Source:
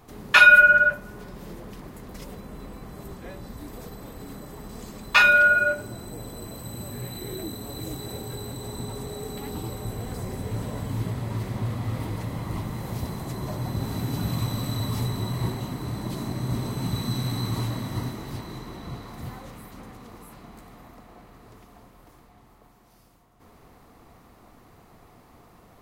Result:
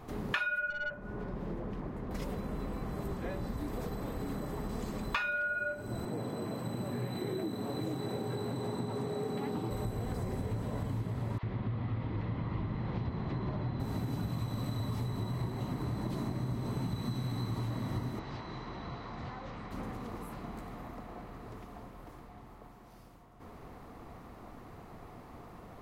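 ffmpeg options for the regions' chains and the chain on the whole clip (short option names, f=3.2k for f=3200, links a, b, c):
-filter_complex "[0:a]asettb=1/sr,asplit=3[a][b][c];[a]atrim=end=0.704[d];[b]atrim=start=0.7:end=2.11,asetpts=PTS-STARTPTS,afade=t=in:d=0.004:c=qsin,afade=t=out:st=1.406:d=0.004:c=qsin,lowpass=f=1.6k:p=1,aeval=exprs='(tanh(7.94*val(0)+0.4)-tanh(0.4))/7.94':c=same[e];[c]atrim=start=2.106[f];[d][e]acrossfade=d=0.004:c1=hsin:c2=qsin[g];[g][f]acrossfade=d=0.004:c1=qsin:c2=hsin,asettb=1/sr,asplit=3[h][i][j];[h]atrim=end=6.054[k];[i]atrim=start=6.05:end=9.71,asetpts=PTS-STARTPTS,afade=t=in:d=0.004:c=qsin,afade=t=out:st=3.656:d=0.004:c=qsin,highpass=f=120:w=0.5412,highpass=f=120:w=1.3066,highshelf=f=6.4k:g=-10.5[l];[j]atrim=start=9.706[m];[k][l]acrossfade=d=0.004:c1=hsin:c2=qsin[n];[n][m]acrossfade=d=0.004:c1=qsin:c2=hsin,asettb=1/sr,asplit=3[o][p][q];[o]atrim=end=11.384[r];[p]atrim=start=11.38:end=13.8,asetpts=PTS-STARTPTS,afade=t=in:d=0.004:c=qsin,afade=t=out:st=2.416:d=0.004:c=qsin,lowpass=f=3.9k:w=0.5412,lowpass=f=3.9k:w=1.3066,acrossover=split=650[s][t];[s]adelay=50[u];[u][t]amix=inputs=2:normalize=0,atrim=end_sample=106722[v];[q]atrim=start=13.796[w];[r][v]acrossfade=d=0.004:c1=hsin:c2=qsin[x];[x][w]acrossfade=d=0.004:c1=qsin:c2=hsin,asettb=1/sr,asplit=3[y][z][aa];[y]atrim=end=18.194[ab];[z]atrim=start=18.19:end=19.71,asetpts=PTS-STARTPTS,afade=t=in:d=0.004:c=qsin,afade=t=out:st=1.516:d=0.004:c=qsin,lowpass=f=5.6k:w=0.5412,lowpass=f=5.6k:w=1.3066,acrossover=split=220|550[ac][ad][ae];[ac]acompressor=threshold=-48dB:ratio=4[af];[ad]acompressor=threshold=-55dB:ratio=4[ag];[ae]acompressor=threshold=-46dB:ratio=4[ah];[af][ag][ah]amix=inputs=3:normalize=0[ai];[aa]atrim=start=19.706[aj];[ab][ai]acrossfade=d=0.004:c1=hsin:c2=qsin[ak];[ak][aj]acrossfade=d=0.004:c1=qsin:c2=hsin,highshelf=f=3.4k:g=-10,acompressor=threshold=-35dB:ratio=12,volume=3.5dB"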